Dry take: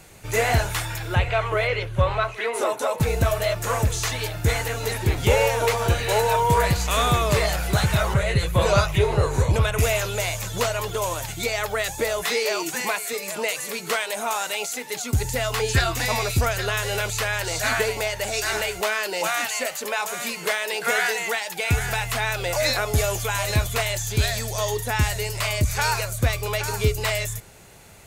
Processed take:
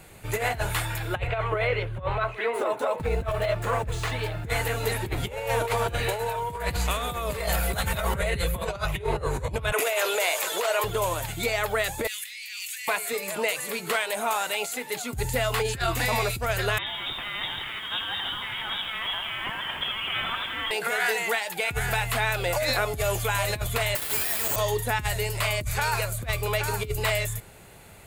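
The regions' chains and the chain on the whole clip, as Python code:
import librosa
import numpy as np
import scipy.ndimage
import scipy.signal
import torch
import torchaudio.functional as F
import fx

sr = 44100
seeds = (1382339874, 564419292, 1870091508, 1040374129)

y = fx.chain(x, sr, fx.median_filter(points=3),
    fx.high_shelf(hz=3800.0, db=-8.0), at=(1.27, 4.5))
y = fx.high_shelf(y, sr, hz=11000.0, db=10.5, at=(7.02, 8.65), fade=0.02)
y = fx.comb(y, sr, ms=4.4, depth=0.33, at=(7.02, 8.65), fade=0.02)
y = fx.dmg_tone(y, sr, hz=530.0, level_db=-36.0, at=(7.02, 8.65), fade=0.02)
y = fx.chain(y, sr, fx.highpass(hz=380.0, slope=24),
    fx.env_flatten(amount_pct=50), at=(9.72, 10.84))
y = fx.chain(y, sr, fx.steep_highpass(hz=2000.0, slope=36),
    fx.over_compress(threshold_db=-35.0, ratio=-1.0), at=(12.07, 12.88))
y = fx.chain(y, sr, fx.over_compress(threshold_db=-31.0, ratio=-1.0),
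    fx.freq_invert(carrier_hz=3700),
    fx.echo_crushed(ms=82, feedback_pct=80, bits=8, wet_db=-8), at=(16.78, 20.71))
y = fx.chain(y, sr, fx.highpass(hz=1400.0, slope=6),
    fx.schmitt(flips_db=-38.5),
    fx.resample_bad(factor=6, down='filtered', up='zero_stuff'), at=(23.95, 24.56))
y = fx.peak_eq(y, sr, hz=5800.0, db=-9.5, octaves=0.56)
y = fx.over_compress(y, sr, threshold_db=-23.0, ratio=-0.5)
y = F.gain(torch.from_numpy(y), -2.0).numpy()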